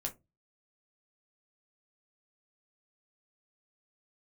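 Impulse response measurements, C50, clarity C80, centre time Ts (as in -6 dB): 17.5 dB, 27.0 dB, 10 ms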